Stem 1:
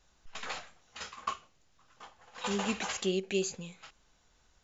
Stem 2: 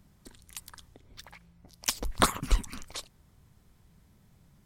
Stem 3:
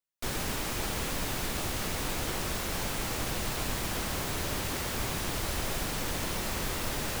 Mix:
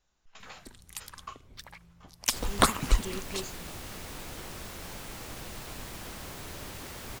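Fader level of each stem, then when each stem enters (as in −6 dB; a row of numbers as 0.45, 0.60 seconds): −8.5, +1.5, −9.0 decibels; 0.00, 0.40, 2.10 seconds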